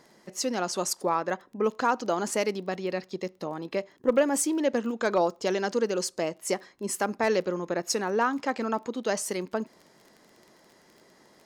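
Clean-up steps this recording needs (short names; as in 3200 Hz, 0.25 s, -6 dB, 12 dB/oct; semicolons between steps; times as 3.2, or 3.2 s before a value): clip repair -13.5 dBFS; de-click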